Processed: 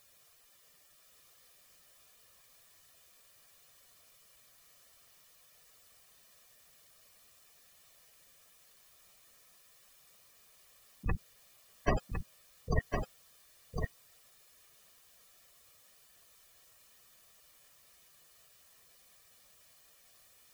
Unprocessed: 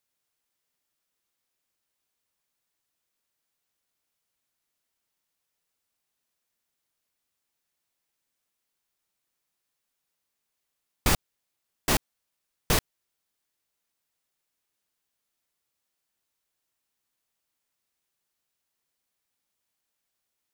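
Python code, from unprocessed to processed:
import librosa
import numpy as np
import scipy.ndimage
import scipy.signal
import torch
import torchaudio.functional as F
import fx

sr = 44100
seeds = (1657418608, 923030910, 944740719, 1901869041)

p1 = fx.spec_gate(x, sr, threshold_db=-10, keep='strong')
p2 = p1 + 0.48 * np.pad(p1, (int(1.7 * sr / 1000.0), 0))[:len(p1)]
p3 = fx.over_compress(p2, sr, threshold_db=-35.0, ratio=-1.0)
p4 = p3 + fx.echo_single(p3, sr, ms=1057, db=-5.0, dry=0)
y = p4 * 10.0 ** (6.5 / 20.0)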